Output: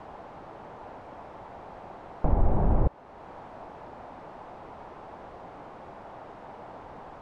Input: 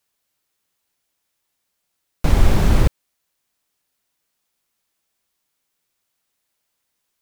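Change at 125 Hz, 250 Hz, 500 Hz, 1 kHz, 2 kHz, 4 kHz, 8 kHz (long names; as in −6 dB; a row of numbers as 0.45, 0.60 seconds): −8.5 dB, −7.5 dB, −4.0 dB, −1.5 dB, −13.5 dB, below −20 dB, below −25 dB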